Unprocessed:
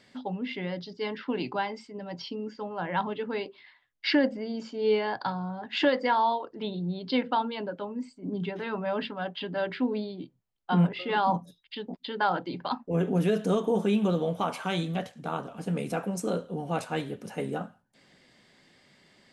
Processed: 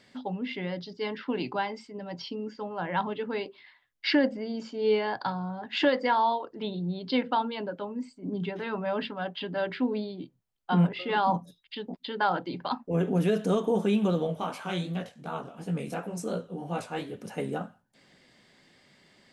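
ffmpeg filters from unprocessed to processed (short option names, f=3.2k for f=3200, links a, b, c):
-filter_complex "[0:a]asettb=1/sr,asplit=3[a][b][c];[a]atrim=end=14.274[d];[b]atrim=start=14.27:end=17.14,asetpts=PTS-STARTPTS,afade=t=in:d=0.004:c=qsin,afade=t=out:st=2.866:d=0.004:c=qsin,flanger=delay=16.5:depth=6.6:speed=2.8[e];[c]atrim=start=17.136[f];[d][e]acrossfade=d=0.004:c1=hsin:c2=qsin[g];[g][f]acrossfade=d=0.004:c1=qsin:c2=hsin"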